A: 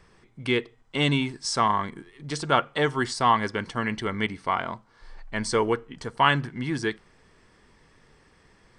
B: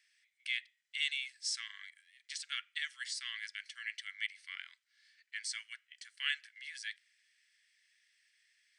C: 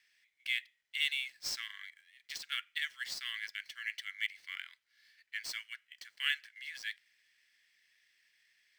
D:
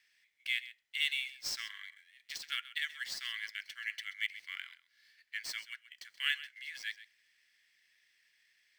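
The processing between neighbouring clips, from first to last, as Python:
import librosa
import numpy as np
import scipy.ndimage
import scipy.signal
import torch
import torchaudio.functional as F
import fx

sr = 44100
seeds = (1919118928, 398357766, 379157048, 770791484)

y1 = scipy.signal.sosfilt(scipy.signal.butter(8, 1800.0, 'highpass', fs=sr, output='sos'), x)
y1 = y1 * librosa.db_to_amplitude(-7.0)
y2 = scipy.ndimage.median_filter(y1, 5, mode='constant')
y2 = y2 * librosa.db_to_amplitude(2.5)
y3 = y2 + 10.0 ** (-15.5 / 20.0) * np.pad(y2, (int(130 * sr / 1000.0), 0))[:len(y2)]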